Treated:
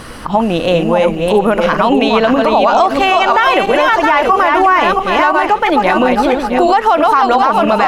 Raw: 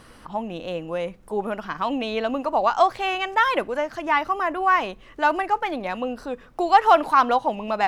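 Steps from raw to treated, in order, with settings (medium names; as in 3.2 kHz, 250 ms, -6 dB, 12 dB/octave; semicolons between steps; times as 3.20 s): backward echo that repeats 333 ms, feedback 46%, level -4 dB; compression 3:1, threshold -23 dBFS, peak gain reduction 10.5 dB; loudness maximiser +19 dB; trim -1 dB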